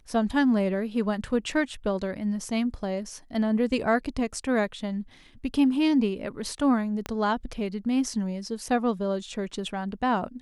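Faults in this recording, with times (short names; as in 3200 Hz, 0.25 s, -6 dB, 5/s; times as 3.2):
7.06 pop -16 dBFS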